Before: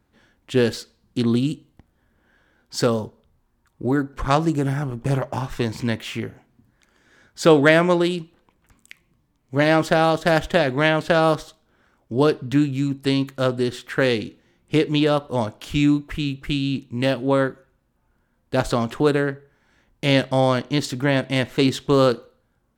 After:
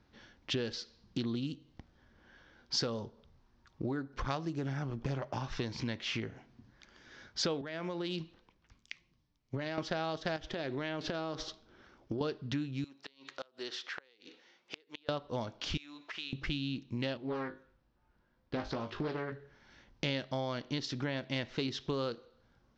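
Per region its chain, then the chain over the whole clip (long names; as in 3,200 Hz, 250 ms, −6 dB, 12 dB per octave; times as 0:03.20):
0:07.61–0:09.78: downward compressor 16 to 1, threshold −23 dBFS + multiband upward and downward expander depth 40%
0:10.36–0:12.21: parametric band 350 Hz +6 dB 0.63 octaves + downward compressor 5 to 1, threshold −25 dBFS
0:12.84–0:15.09: high-pass filter 550 Hz + downward compressor 2 to 1, threshold −46 dBFS + gate with flip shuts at −26 dBFS, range −28 dB
0:15.77–0:16.33: high-pass filter 700 Hz + downward compressor 4 to 1, threshold −41 dBFS
0:17.17–0:19.32: high-frequency loss of the air 92 metres + tuned comb filter 52 Hz, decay 0.21 s, mix 90% + highs frequency-modulated by the lows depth 0.46 ms
whole clip: downward compressor 5 to 1, threshold −34 dBFS; Butterworth low-pass 5,800 Hz 48 dB per octave; high-shelf EQ 4,200 Hz +10.5 dB; level −1 dB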